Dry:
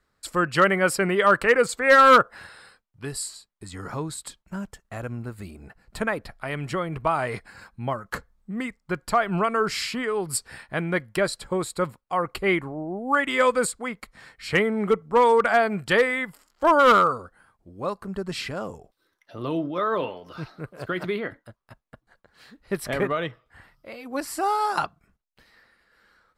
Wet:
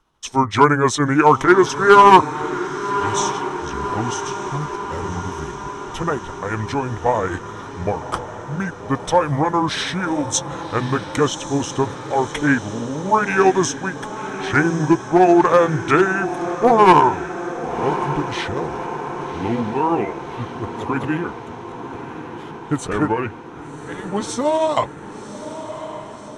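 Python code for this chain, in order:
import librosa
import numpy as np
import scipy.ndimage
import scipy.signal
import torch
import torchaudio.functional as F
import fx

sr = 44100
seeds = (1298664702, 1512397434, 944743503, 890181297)

y = fx.pitch_heads(x, sr, semitones=-5.0)
y = fx.echo_diffused(y, sr, ms=1117, feedback_pct=67, wet_db=-11.5)
y = y * librosa.db_to_amplitude(6.5)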